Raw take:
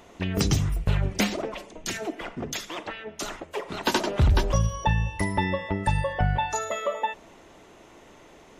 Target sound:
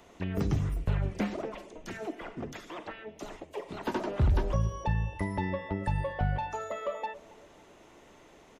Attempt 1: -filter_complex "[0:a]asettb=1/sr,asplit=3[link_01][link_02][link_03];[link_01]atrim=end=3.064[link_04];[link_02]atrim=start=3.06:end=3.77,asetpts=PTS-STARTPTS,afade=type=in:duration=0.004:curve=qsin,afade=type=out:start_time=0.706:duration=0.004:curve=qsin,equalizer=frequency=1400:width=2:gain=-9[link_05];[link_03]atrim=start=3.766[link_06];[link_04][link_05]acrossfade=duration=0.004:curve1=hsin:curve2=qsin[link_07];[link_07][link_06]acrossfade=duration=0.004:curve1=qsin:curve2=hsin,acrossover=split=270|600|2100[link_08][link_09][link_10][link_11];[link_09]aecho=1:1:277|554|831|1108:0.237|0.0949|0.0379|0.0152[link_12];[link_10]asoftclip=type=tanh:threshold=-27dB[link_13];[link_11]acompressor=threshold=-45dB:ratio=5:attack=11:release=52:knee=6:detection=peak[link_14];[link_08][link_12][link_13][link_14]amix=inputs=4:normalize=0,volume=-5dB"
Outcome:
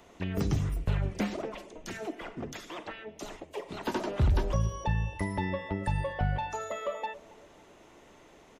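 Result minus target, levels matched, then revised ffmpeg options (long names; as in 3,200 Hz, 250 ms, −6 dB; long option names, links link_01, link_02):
downward compressor: peak gain reduction −6 dB
-filter_complex "[0:a]asettb=1/sr,asplit=3[link_01][link_02][link_03];[link_01]atrim=end=3.064[link_04];[link_02]atrim=start=3.06:end=3.77,asetpts=PTS-STARTPTS,afade=type=in:duration=0.004:curve=qsin,afade=type=out:start_time=0.706:duration=0.004:curve=qsin,equalizer=frequency=1400:width=2:gain=-9[link_05];[link_03]atrim=start=3.766[link_06];[link_04][link_05]acrossfade=duration=0.004:curve1=hsin:curve2=qsin[link_07];[link_07][link_06]acrossfade=duration=0.004:curve1=qsin:curve2=hsin,acrossover=split=270|600|2100[link_08][link_09][link_10][link_11];[link_09]aecho=1:1:277|554|831|1108:0.237|0.0949|0.0379|0.0152[link_12];[link_10]asoftclip=type=tanh:threshold=-27dB[link_13];[link_11]acompressor=threshold=-52.5dB:ratio=5:attack=11:release=52:knee=6:detection=peak[link_14];[link_08][link_12][link_13][link_14]amix=inputs=4:normalize=0,volume=-5dB"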